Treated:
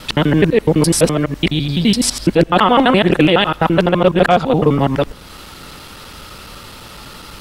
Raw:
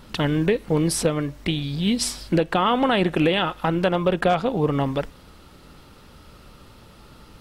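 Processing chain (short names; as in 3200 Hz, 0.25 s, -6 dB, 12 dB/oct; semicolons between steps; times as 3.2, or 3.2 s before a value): local time reversal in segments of 84 ms; mismatched tape noise reduction encoder only; gain +8.5 dB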